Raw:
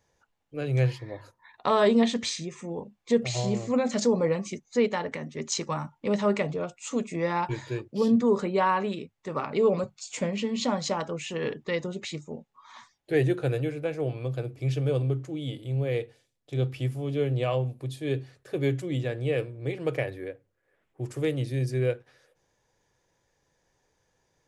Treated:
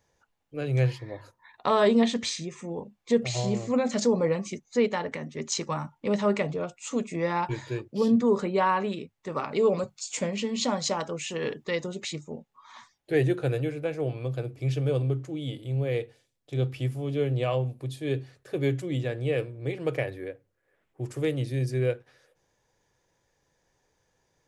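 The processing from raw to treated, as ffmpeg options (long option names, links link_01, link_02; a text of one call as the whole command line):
ffmpeg -i in.wav -filter_complex "[0:a]asettb=1/sr,asplit=3[link_01][link_02][link_03];[link_01]atrim=end=9.324[link_04];[link_02]atrim=start=9.32:end=12.13,asetpts=PTS-STARTPTS,afade=type=in:duration=0.004:curve=qsin,afade=type=out:start_time=2.806:duration=0.004:curve=qsin,bass=frequency=250:gain=-2,treble=frequency=4000:gain=5[link_05];[link_03]atrim=start=12.126[link_06];[link_04][link_05]acrossfade=duration=0.004:curve1=hsin:curve2=qsin[link_07];[link_07][link_06]acrossfade=duration=0.004:curve1=qsin:curve2=hsin" out.wav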